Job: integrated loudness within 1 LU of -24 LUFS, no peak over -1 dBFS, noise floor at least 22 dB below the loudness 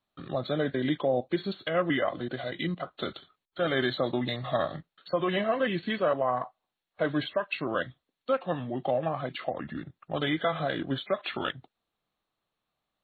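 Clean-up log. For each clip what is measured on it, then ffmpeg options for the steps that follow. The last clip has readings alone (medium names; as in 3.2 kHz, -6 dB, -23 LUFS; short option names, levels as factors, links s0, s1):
loudness -30.5 LUFS; peak level -16.0 dBFS; loudness target -24.0 LUFS
-> -af "volume=2.11"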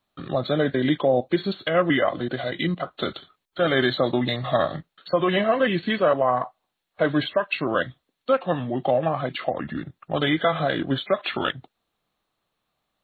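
loudness -24.0 LUFS; peak level -9.5 dBFS; noise floor -80 dBFS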